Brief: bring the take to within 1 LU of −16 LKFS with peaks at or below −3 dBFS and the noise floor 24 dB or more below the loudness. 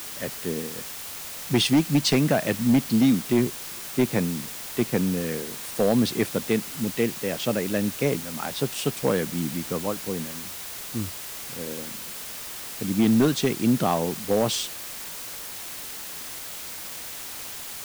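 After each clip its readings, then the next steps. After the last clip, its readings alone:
share of clipped samples 0.6%; peaks flattened at −13.5 dBFS; background noise floor −37 dBFS; target noise floor −50 dBFS; integrated loudness −26.0 LKFS; sample peak −13.5 dBFS; target loudness −16.0 LKFS
→ clipped peaks rebuilt −13.5 dBFS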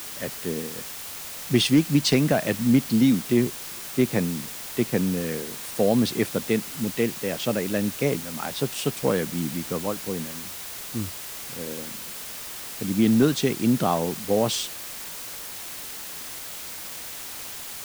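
share of clipped samples 0.0%; background noise floor −37 dBFS; target noise floor −50 dBFS
→ broadband denoise 13 dB, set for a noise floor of −37 dBFS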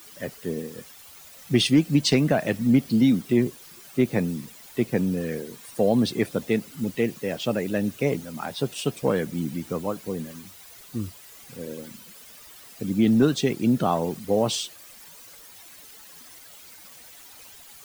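background noise floor −47 dBFS; target noise floor −49 dBFS
→ broadband denoise 6 dB, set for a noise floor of −47 dBFS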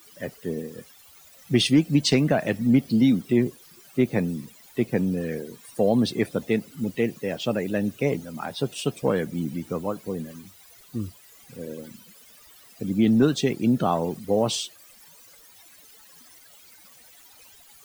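background noise floor −52 dBFS; integrated loudness −25.0 LKFS; sample peak −8.0 dBFS; target loudness −16.0 LKFS
→ level +9 dB
brickwall limiter −3 dBFS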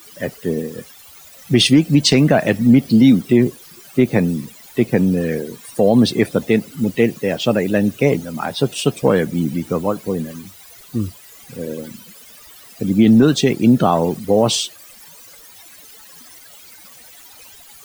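integrated loudness −16.5 LKFS; sample peak −3.0 dBFS; background noise floor −43 dBFS

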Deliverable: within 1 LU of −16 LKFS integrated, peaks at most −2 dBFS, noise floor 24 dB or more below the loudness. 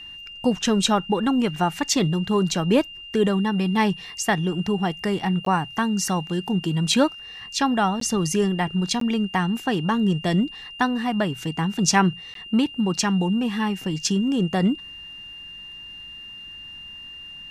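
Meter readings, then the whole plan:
number of dropouts 4; longest dropout 13 ms; interfering tone 2,800 Hz; level of the tone −37 dBFS; integrated loudness −23.0 LKFS; sample peak −5.5 dBFS; target loudness −16.0 LKFS
→ repair the gap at 0:05.45/0:08.00/0:09.00/0:12.34, 13 ms
notch filter 2,800 Hz, Q 30
level +7 dB
brickwall limiter −2 dBFS

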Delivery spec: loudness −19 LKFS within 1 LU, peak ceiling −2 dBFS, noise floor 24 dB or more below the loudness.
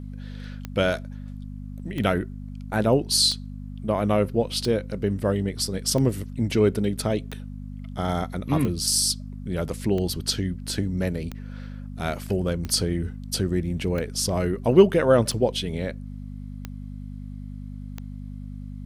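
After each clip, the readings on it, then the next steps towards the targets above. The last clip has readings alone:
number of clicks 14; mains hum 50 Hz; hum harmonics up to 250 Hz; level of the hum −33 dBFS; integrated loudness −24.5 LKFS; sample peak −3.5 dBFS; target loudness −19.0 LKFS
→ click removal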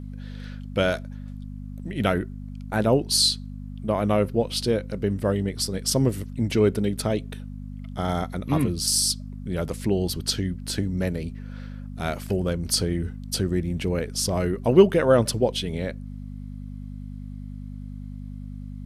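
number of clicks 0; mains hum 50 Hz; hum harmonics up to 250 Hz; level of the hum −33 dBFS
→ hum removal 50 Hz, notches 5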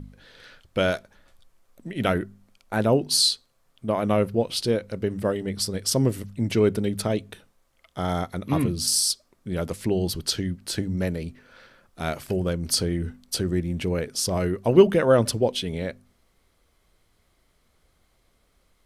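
mains hum none found; integrated loudness −24.5 LKFS; sample peak −4.0 dBFS; target loudness −19.0 LKFS
→ level +5.5 dB
brickwall limiter −2 dBFS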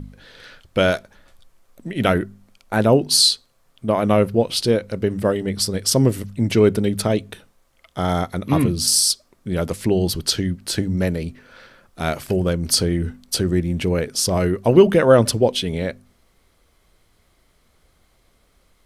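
integrated loudness −19.5 LKFS; sample peak −2.0 dBFS; background noise floor −61 dBFS

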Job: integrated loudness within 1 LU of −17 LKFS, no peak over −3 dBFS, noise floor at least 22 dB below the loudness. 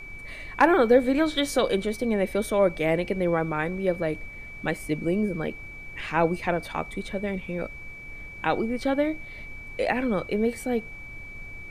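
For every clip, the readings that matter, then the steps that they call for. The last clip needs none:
interfering tone 2,300 Hz; level of the tone −40 dBFS; background noise floor −41 dBFS; target noise floor −48 dBFS; integrated loudness −26.0 LKFS; sample peak −6.5 dBFS; target loudness −17.0 LKFS
→ notch filter 2,300 Hz, Q 30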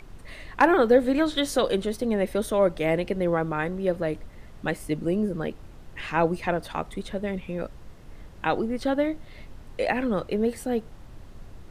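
interfering tone none found; background noise floor −46 dBFS; target noise floor −48 dBFS
→ noise reduction from a noise print 6 dB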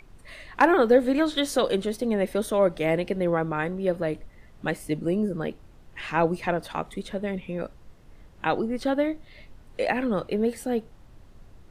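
background noise floor −51 dBFS; integrated loudness −26.0 LKFS; sample peak −7.0 dBFS; target loudness −17.0 LKFS
→ level +9 dB
brickwall limiter −3 dBFS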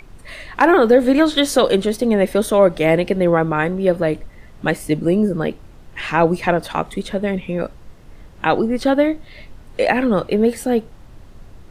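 integrated loudness −17.5 LKFS; sample peak −3.0 dBFS; background noise floor −42 dBFS

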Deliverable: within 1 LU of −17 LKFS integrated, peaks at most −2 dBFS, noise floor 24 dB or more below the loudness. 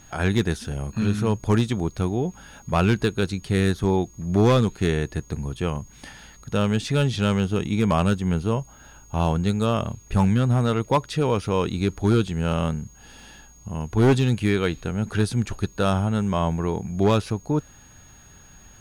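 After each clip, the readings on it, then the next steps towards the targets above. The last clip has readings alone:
share of clipped samples 0.9%; peaks flattened at −12.0 dBFS; interfering tone 6,600 Hz; level of the tone −51 dBFS; integrated loudness −23.5 LKFS; sample peak −12.0 dBFS; target loudness −17.0 LKFS
→ clipped peaks rebuilt −12 dBFS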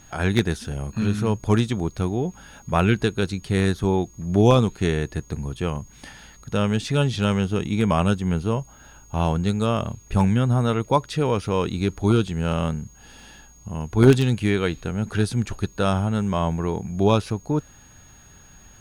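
share of clipped samples 0.0%; interfering tone 6,600 Hz; level of the tone −51 dBFS
→ notch filter 6,600 Hz, Q 30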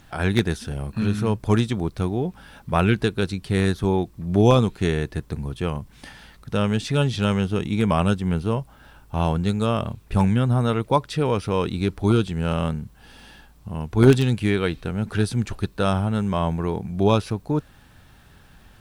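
interfering tone none found; integrated loudness −23.0 LKFS; sample peak −3.0 dBFS; target loudness −17.0 LKFS
→ level +6 dB
brickwall limiter −2 dBFS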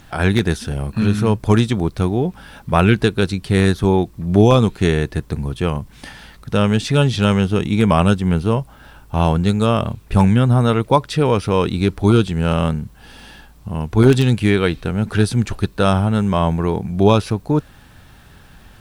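integrated loudness −17.5 LKFS; sample peak −2.0 dBFS; background noise floor −45 dBFS

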